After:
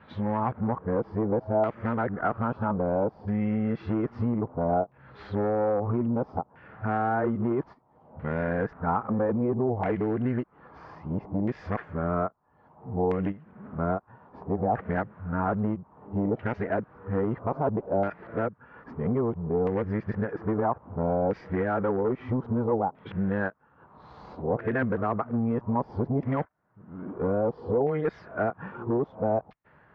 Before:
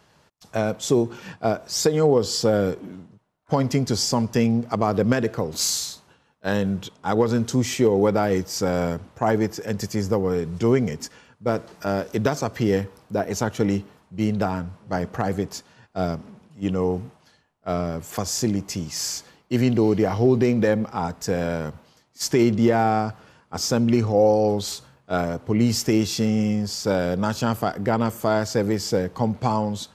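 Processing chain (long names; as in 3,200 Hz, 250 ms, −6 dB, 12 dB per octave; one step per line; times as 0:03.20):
played backwards from end to start
high-frequency loss of the air 320 metres
downward compressor 10 to 1, threshold −23 dBFS, peak gain reduction 10.5 dB
asymmetric clip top −22.5 dBFS, bottom −18.5 dBFS
auto-filter low-pass saw down 0.61 Hz 740–2,100 Hz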